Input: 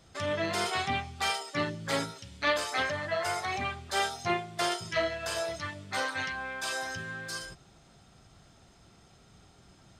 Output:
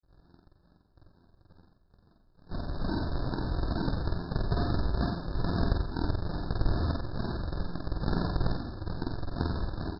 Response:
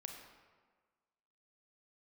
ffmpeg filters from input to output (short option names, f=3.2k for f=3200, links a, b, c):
-filter_complex "[0:a]areverse,agate=range=-19dB:threshold=-50dB:ratio=16:detection=peak,asubboost=boost=7:cutoff=80,asplit=2[a][b];[b]highpass=f=720:p=1,volume=37dB,asoftclip=type=tanh:threshold=-15.5dB[c];[a][c]amix=inputs=2:normalize=0,lowpass=f=1.2k:p=1,volume=-6dB,afftfilt=real='hypot(re,im)*cos(PI*b)':imag='0':win_size=1024:overlap=0.75,aresample=11025,acrusher=samples=35:mix=1:aa=0.000001:lfo=1:lforange=35:lforate=2.3,aresample=44100,asplit=2[d][e];[e]adelay=47,volume=-5dB[f];[d][f]amix=inputs=2:normalize=0,asplit=2[g][h];[h]aecho=0:1:50|87:0.596|0.422[i];[g][i]amix=inputs=2:normalize=0,afftfilt=real='re*eq(mod(floor(b*sr/1024/1800),2),0)':imag='im*eq(mod(floor(b*sr/1024/1800),2),0)':win_size=1024:overlap=0.75,volume=-3.5dB"